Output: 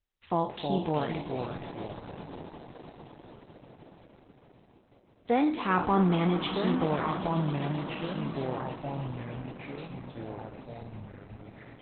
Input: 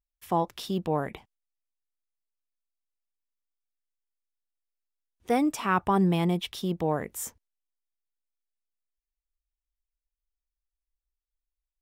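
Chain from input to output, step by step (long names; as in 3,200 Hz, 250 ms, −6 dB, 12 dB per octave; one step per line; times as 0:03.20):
peak hold with a decay on every bin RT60 0.43 s
0:05.32–0:05.83: low-pass filter 7,600 Hz 24 dB per octave
echo that builds up and dies away 132 ms, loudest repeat 5, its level −17 dB
delay with pitch and tempo change per echo 257 ms, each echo −3 semitones, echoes 3, each echo −6 dB
level −1 dB
Opus 8 kbit/s 48,000 Hz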